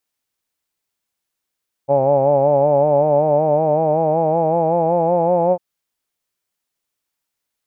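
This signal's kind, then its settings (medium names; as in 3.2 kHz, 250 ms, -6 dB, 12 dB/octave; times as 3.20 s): formant-synthesis vowel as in hawed, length 3.70 s, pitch 136 Hz, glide +4.5 st, vibrato depth 0.7 st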